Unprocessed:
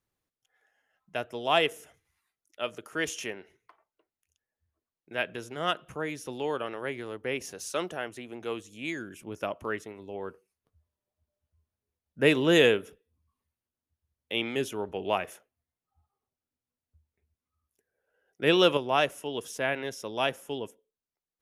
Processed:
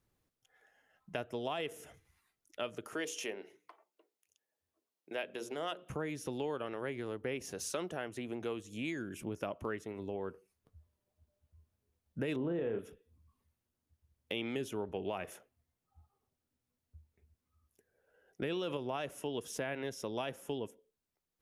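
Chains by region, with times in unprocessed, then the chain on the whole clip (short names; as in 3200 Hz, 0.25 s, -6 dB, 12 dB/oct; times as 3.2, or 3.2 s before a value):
2.94–5.9 HPF 330 Hz + bell 1500 Hz -5 dB 1.1 oct + notches 60/120/180/240/300/360/420/480/540 Hz
12.36–12.79 LPF 1200 Hz + flutter echo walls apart 6 m, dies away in 0.24 s
whole clip: low shelf 470 Hz +6.5 dB; limiter -16.5 dBFS; compressor 3:1, threshold -40 dBFS; gain +2 dB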